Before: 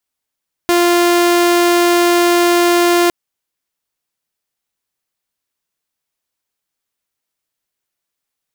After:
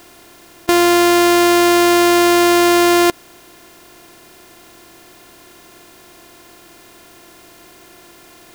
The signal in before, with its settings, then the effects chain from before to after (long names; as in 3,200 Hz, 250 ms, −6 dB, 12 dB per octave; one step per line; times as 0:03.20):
tone saw 348 Hz −7 dBFS 2.41 s
compressor on every frequency bin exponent 0.4